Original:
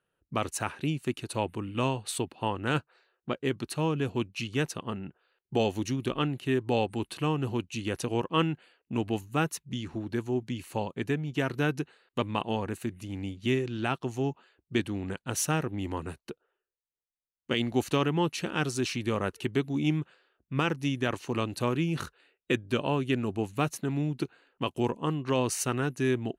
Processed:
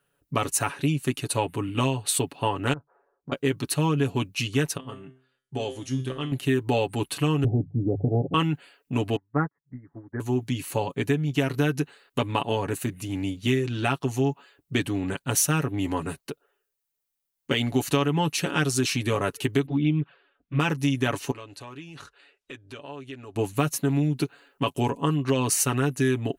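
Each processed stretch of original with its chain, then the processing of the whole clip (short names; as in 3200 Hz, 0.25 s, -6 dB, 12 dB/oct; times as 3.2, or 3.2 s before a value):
2.73–3.32 LPF 1100 Hz 24 dB/oct + compressor, threshold -41 dBFS
4.77–6.32 resonator 130 Hz, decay 0.42 s, mix 80% + careless resampling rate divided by 2×, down none, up filtered
7.44–8.34 Chebyshev low-pass 810 Hz, order 10 + tilt -2.5 dB/oct + de-hum 49.33 Hz, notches 3
9.16–10.2 steep low-pass 2000 Hz 96 dB/oct + upward expander 2.5:1, over -44 dBFS
19.66–20.6 envelope flanger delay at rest 4.9 ms, full sweep at -23 dBFS + LPF 3500 Hz 24 dB/oct
21.31–23.36 LPF 7000 Hz + bell 170 Hz -10 dB 1.3 oct + compressor 2:1, threshold -57 dBFS
whole clip: high shelf 8900 Hz +10.5 dB; comb 7.1 ms, depth 66%; compressor 3:1, threshold -25 dBFS; gain +5 dB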